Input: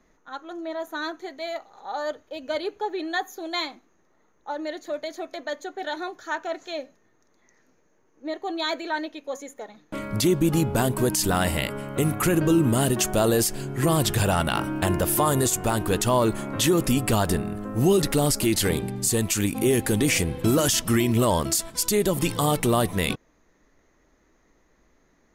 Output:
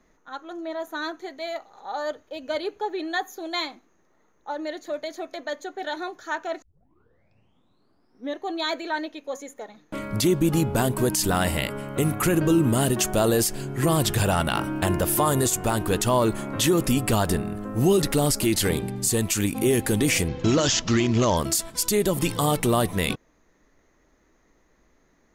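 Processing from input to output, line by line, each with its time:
0:06.62: tape start 1.83 s
0:20.28–0:21.37: bad sample-rate conversion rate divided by 3×, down none, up filtered

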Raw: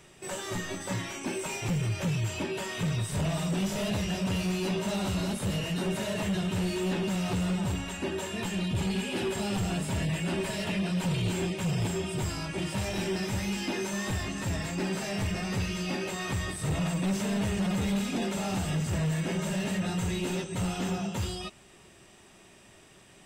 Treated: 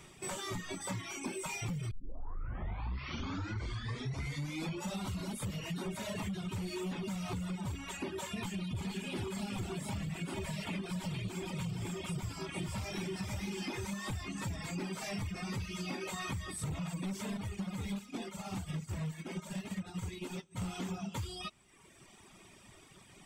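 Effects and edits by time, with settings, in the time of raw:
0:01.91: tape start 3.14 s
0:08.39–0:13.94: single-tap delay 456 ms −4 dB
0:17.37–0:20.62: expander for the loud parts 2.5 to 1, over −38 dBFS
whole clip: reverb reduction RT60 1.2 s; comb filter 0.9 ms, depth 32%; downward compressor, threshold −36 dBFS

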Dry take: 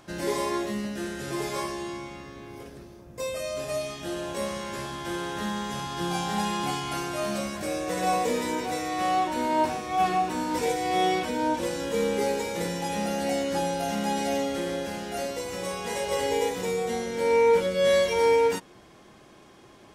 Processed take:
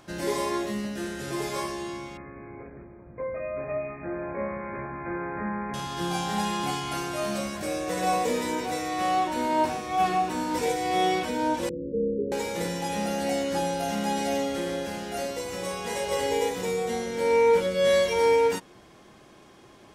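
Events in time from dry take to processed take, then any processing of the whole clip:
0:02.17–0:05.74: linear-phase brick-wall low-pass 2,500 Hz
0:11.69–0:12.32: Butterworth low-pass 510 Hz 96 dB per octave

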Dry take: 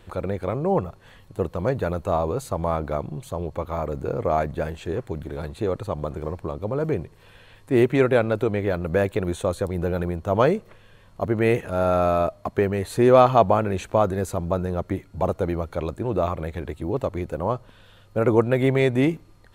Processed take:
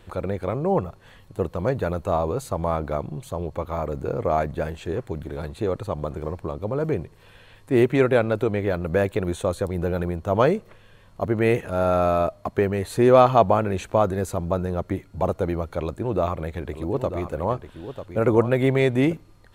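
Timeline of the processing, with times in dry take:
0:15.79–0:19.13: single-tap delay 944 ms −10 dB

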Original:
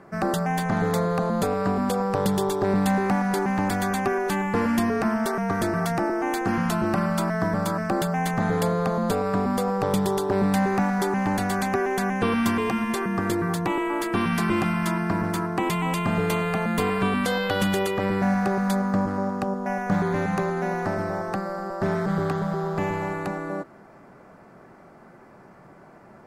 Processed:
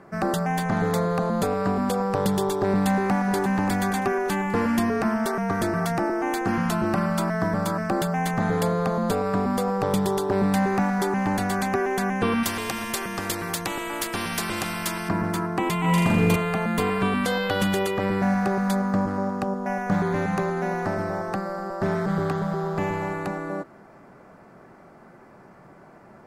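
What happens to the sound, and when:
0:02.69–0:03.42: delay throw 580 ms, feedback 30%, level −11 dB
0:12.43–0:15.09: every bin compressed towards the loudest bin 2 to 1
0:15.80–0:16.36: flutter between parallel walls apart 7 metres, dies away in 0.88 s

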